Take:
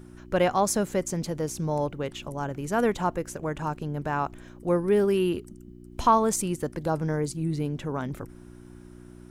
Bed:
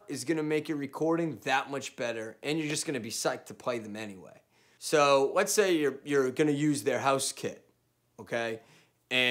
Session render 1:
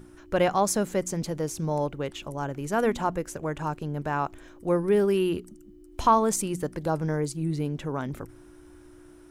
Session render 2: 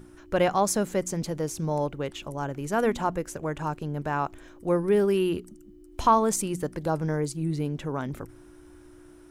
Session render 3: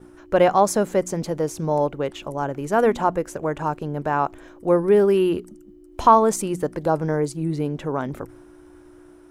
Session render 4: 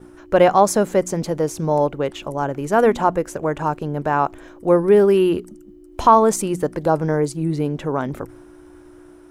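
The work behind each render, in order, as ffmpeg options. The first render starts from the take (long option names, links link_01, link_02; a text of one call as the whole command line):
ffmpeg -i in.wav -af "bandreject=frequency=60:width_type=h:width=4,bandreject=frequency=120:width_type=h:width=4,bandreject=frequency=180:width_type=h:width=4,bandreject=frequency=240:width_type=h:width=4" out.wav
ffmpeg -i in.wav -af anull out.wav
ffmpeg -i in.wav -af "agate=range=-33dB:threshold=-47dB:ratio=3:detection=peak,equalizer=frequency=630:width=0.42:gain=7.5" out.wav
ffmpeg -i in.wav -af "volume=3dB,alimiter=limit=-2dB:level=0:latency=1" out.wav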